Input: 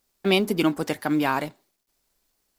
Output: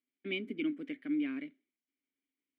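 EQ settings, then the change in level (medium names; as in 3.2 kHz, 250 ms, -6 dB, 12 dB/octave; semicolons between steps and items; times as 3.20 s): vowel filter i; tone controls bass -8 dB, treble -11 dB; peaking EQ 5 kHz -9.5 dB 0.94 oct; 0.0 dB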